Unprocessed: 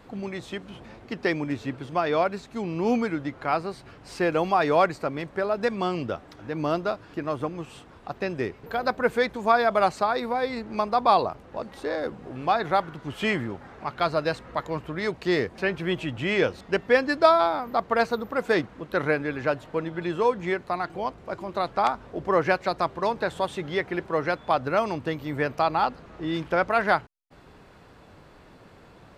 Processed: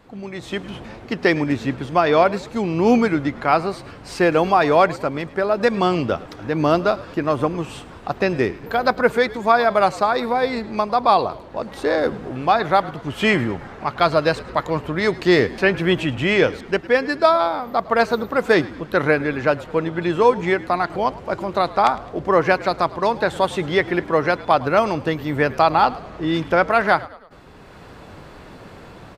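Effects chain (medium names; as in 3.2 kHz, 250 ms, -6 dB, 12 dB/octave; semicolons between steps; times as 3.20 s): level rider gain up to 11.5 dB; frequency-shifting echo 106 ms, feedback 48%, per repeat -58 Hz, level -19 dB; trim -1 dB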